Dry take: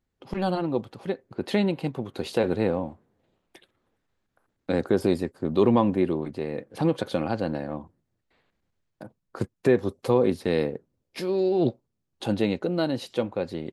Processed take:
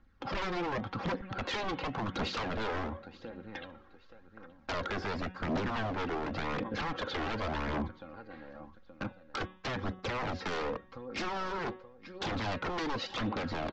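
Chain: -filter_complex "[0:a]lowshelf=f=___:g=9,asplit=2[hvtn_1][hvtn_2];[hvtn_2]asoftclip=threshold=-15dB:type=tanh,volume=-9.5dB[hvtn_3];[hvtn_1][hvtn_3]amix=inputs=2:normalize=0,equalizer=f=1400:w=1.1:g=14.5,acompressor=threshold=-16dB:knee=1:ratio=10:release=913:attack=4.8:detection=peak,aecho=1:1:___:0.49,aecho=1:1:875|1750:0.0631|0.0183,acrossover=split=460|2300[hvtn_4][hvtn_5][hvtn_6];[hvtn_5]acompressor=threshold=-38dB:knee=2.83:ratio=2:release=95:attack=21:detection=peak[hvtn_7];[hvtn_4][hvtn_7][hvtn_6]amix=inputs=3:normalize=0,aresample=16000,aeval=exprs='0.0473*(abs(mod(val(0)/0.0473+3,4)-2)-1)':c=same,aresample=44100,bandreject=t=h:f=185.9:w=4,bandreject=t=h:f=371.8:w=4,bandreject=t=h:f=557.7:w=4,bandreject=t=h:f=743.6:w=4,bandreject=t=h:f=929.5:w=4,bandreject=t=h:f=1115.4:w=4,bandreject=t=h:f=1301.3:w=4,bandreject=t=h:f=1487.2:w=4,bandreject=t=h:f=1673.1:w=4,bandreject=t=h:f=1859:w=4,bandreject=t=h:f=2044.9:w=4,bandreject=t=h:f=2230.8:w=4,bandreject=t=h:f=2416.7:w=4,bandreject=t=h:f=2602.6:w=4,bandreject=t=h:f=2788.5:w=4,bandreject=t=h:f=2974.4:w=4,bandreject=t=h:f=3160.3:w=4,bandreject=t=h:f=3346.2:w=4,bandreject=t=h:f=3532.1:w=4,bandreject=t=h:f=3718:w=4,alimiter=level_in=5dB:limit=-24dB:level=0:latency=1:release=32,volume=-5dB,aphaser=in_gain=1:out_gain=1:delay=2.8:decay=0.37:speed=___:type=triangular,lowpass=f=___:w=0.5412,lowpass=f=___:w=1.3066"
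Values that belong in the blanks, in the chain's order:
280, 3.7, 0.9, 5800, 5800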